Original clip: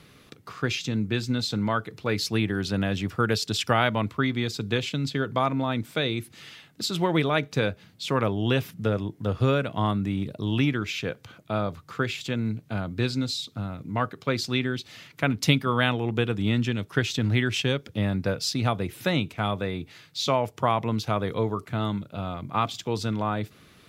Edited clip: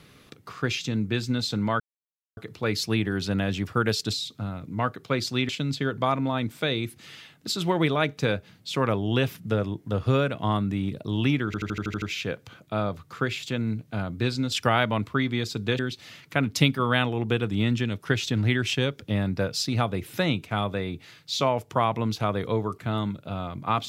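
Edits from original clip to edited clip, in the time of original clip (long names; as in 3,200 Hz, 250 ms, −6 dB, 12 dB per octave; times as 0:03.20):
0:01.80: splice in silence 0.57 s
0:03.56–0:04.83: swap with 0:13.30–0:14.66
0:10.80: stutter 0.08 s, 8 plays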